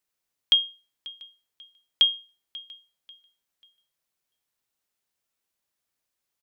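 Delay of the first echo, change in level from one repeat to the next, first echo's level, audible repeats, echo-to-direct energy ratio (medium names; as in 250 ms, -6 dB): 540 ms, -9.5 dB, -20.5 dB, 2, -20.0 dB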